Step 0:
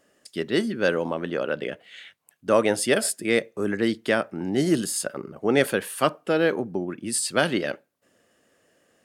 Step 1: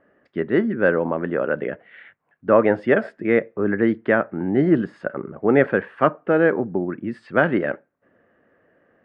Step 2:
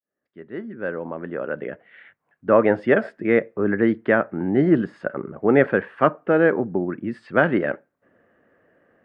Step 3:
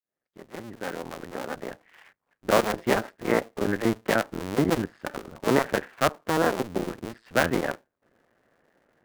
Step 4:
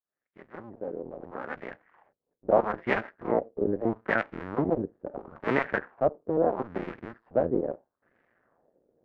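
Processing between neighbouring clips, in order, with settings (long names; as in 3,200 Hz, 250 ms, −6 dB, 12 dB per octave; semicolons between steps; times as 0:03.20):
Chebyshev low-pass filter 1,800 Hz, order 3; level +5 dB
fade in at the beginning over 2.74 s
sub-harmonics by changed cycles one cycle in 2, muted; level −3 dB
auto-filter low-pass sine 0.76 Hz 440–2,200 Hz; level −5.5 dB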